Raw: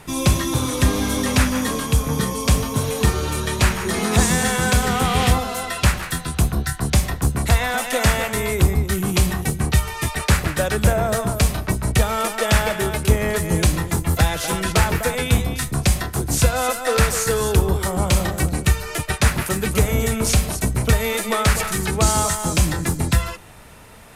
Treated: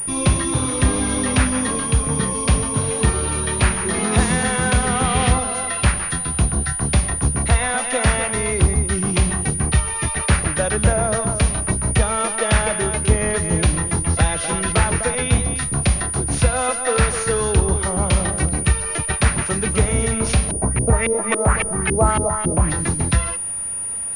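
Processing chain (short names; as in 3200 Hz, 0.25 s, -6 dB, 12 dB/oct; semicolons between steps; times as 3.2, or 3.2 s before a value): 20.51–22.7 LFO low-pass saw up 3.6 Hz 300–2900 Hz; pulse-width modulation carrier 9500 Hz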